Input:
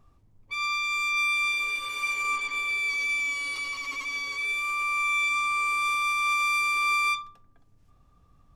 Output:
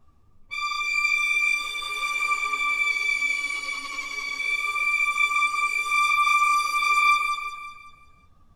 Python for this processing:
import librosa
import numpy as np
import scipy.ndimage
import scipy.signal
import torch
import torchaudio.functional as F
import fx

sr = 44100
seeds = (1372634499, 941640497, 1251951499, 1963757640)

y = fx.echo_feedback(x, sr, ms=185, feedback_pct=44, wet_db=-4.0)
y = fx.ensemble(y, sr)
y = y * librosa.db_to_amplitude(3.5)